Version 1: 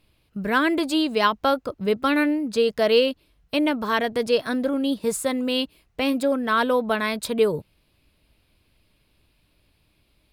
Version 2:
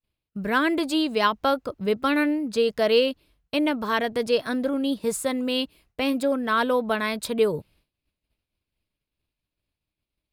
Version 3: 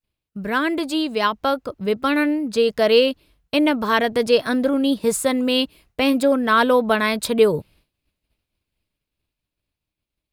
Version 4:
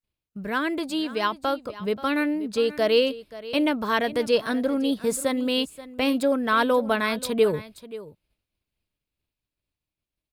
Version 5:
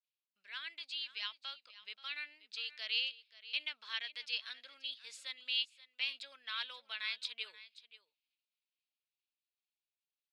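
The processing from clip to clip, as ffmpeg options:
-af "agate=range=-33dB:threshold=-51dB:ratio=3:detection=peak,volume=-1.5dB"
-af "dynaudnorm=f=560:g=9:m=6dB,volume=1dB"
-af "aecho=1:1:531:0.15,volume=-5dB"
-af "asuperpass=centerf=3400:order=4:qfactor=1.3,volume=-5.5dB"

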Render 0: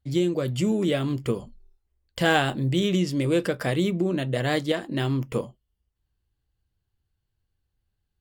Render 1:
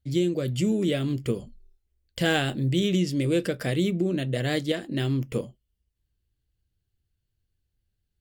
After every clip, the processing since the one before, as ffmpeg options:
-af "equalizer=f=980:t=o:w=1:g=-10.5"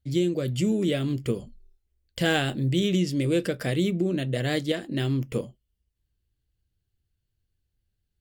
-af anull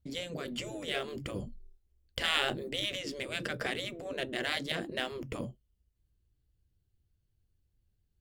-filter_complex "[0:a]acrossover=split=7900[a][b];[b]acompressor=threshold=-55dB:ratio=4:attack=1:release=60[c];[a][c]amix=inputs=2:normalize=0,afftfilt=real='re*lt(hypot(re,im),0.141)':imag='im*lt(hypot(re,im),0.141)':win_size=1024:overlap=0.75,asplit=2[d][e];[e]adynamicsmooth=sensitivity=6:basefreq=1.2k,volume=-0.5dB[f];[d][f]amix=inputs=2:normalize=0,volume=-3.5dB"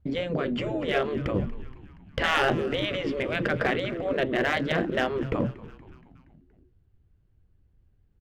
-filter_complex "[0:a]lowpass=1.8k,asplit=2[a][b];[b]aeval=exprs='0.0335*(abs(mod(val(0)/0.0335+3,4)-2)-1)':c=same,volume=-5.5dB[c];[a][c]amix=inputs=2:normalize=0,asplit=6[d][e][f][g][h][i];[e]adelay=236,afreqshift=-98,volume=-18dB[j];[f]adelay=472,afreqshift=-196,volume=-22.4dB[k];[g]adelay=708,afreqshift=-294,volume=-26.9dB[l];[h]adelay=944,afreqshift=-392,volume=-31.3dB[m];[i]adelay=1180,afreqshift=-490,volume=-35.7dB[n];[d][j][k][l][m][n]amix=inputs=6:normalize=0,volume=8dB"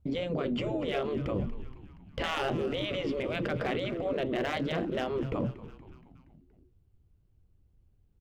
-af "equalizer=f=1.7k:w=2.7:g=-7.5,alimiter=limit=-21dB:level=0:latency=1:release=25,volume=-2dB"

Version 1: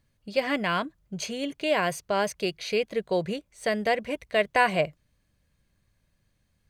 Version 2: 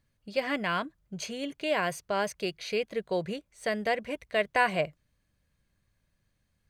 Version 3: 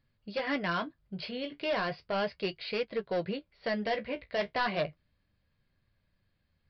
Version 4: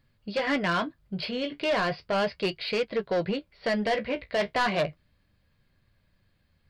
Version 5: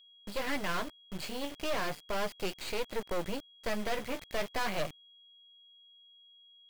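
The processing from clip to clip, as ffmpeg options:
-af "equalizer=f=1.5k:w=1.5:g=2,volume=-4dB"
-af "aresample=11025,asoftclip=type=hard:threshold=-26dB,aresample=44100,flanger=delay=7.5:depth=8.9:regen=-42:speed=0.35:shape=triangular,volume=3.5dB"
-af "asoftclip=type=tanh:threshold=-26dB,volume=7dB"
-af "acrusher=bits=4:dc=4:mix=0:aa=0.000001,aeval=exprs='val(0)+0.002*sin(2*PI*3300*n/s)':c=same,volume=-3dB"

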